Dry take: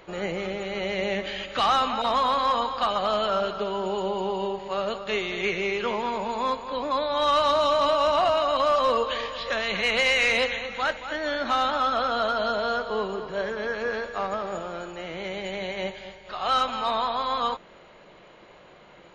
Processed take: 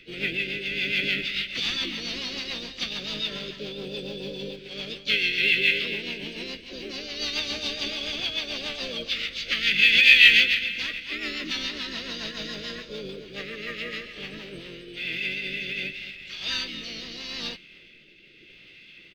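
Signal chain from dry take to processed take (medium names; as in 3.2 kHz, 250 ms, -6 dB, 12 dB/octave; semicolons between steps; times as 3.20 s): FFT filter 310 Hz 0 dB, 760 Hz -25 dB, 1.1 kHz -25 dB, 2.2 kHz +14 dB, 9.4 kHz -18 dB; short-mantissa float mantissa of 4-bit; harmony voices -5 st -6 dB, +3 st -17 dB, +5 st -10 dB; rotary cabinet horn 7 Hz, later 0.8 Hz, at 14.13 s; formant shift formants +3 st; trim -1 dB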